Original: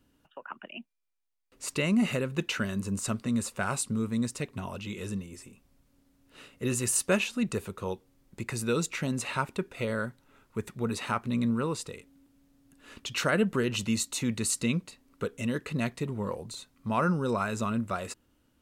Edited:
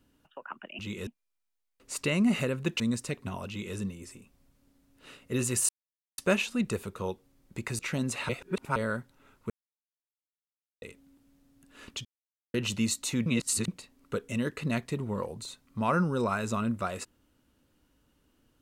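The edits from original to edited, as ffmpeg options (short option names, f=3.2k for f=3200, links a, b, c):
-filter_complex "[0:a]asplit=14[a][b][c][d][e][f][g][h][i][j][k][l][m][n];[a]atrim=end=0.792[o];[b]atrim=start=4.788:end=5.072[p];[c]atrim=start=0.788:end=2.522[q];[d]atrim=start=4.108:end=7,asetpts=PTS-STARTPTS,afade=t=out:st=2.888:d=0.004:c=hsin,apad=pad_dur=0.49[r];[e]atrim=start=7:end=8.612,asetpts=PTS-STARTPTS,afade=t=in:d=0.004:c=hsin[s];[f]atrim=start=8.878:end=9.382[t];[g]atrim=start=9.378:end=9.852,asetpts=PTS-STARTPTS,areverse[u];[h]atrim=start=9.848:end=10.59,asetpts=PTS-STARTPTS,afade=t=out:st=0.738:d=0.004:c=hsin[v];[i]atrim=start=10.59:end=11.91,asetpts=PTS-STARTPTS,volume=0[w];[j]atrim=start=11.91:end=13.14,asetpts=PTS-STARTPTS,afade=t=in:d=0.004:c=hsin,afade=t=out:st=1.226:d=0.004:c=hsin[x];[k]atrim=start=13.14:end=13.63,asetpts=PTS-STARTPTS,volume=0[y];[l]atrim=start=13.63:end=14.352,asetpts=PTS-STARTPTS,afade=t=in:d=0.004:c=hsin[z];[m]atrim=start=14.348:end=14.772,asetpts=PTS-STARTPTS,areverse[aa];[n]atrim=start=14.768[ab];[o][p]acrossfade=d=0.004:c1=hsin:c2=hsin[ac];[ac][q]acrossfade=d=0.004:c1=hsin:c2=hsin[ad];[r][s]concat=n=2:v=0:a=1[ae];[ad][ae]acrossfade=d=0.004:c1=hsin:c2=hsin[af];[af][t]acrossfade=d=0.004:c1=hsin:c2=hsin[ag];[ag][u]acrossfade=d=0.004:c1=hsin:c2=hsin[ah];[v][w][x][y][z]concat=n=5:v=0:a=1[ai];[ah][ai]acrossfade=d=0.004:c1=hsin:c2=hsin[aj];[aj][aa]acrossfade=d=0.004:c1=hsin:c2=hsin[ak];[ak][ab]acrossfade=d=0.004:c1=hsin:c2=hsin"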